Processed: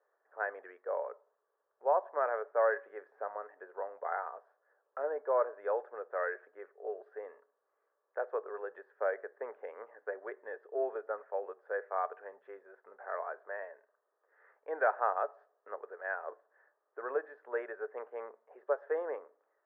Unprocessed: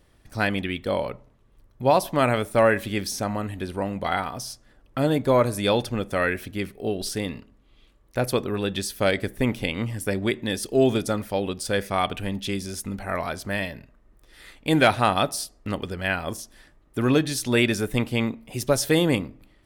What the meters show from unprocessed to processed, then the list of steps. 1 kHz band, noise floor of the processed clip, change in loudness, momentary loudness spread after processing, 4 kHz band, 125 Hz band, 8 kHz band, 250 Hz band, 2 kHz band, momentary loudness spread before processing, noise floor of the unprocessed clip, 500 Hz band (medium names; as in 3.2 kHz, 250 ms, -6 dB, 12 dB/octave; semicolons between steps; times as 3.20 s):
-9.5 dB, -82 dBFS, -12.5 dB, 16 LU, under -40 dB, under -40 dB, under -40 dB, -31.5 dB, -13.0 dB, 12 LU, -58 dBFS, -10.0 dB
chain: Chebyshev band-pass 430–1700 Hz, order 4; trim -9 dB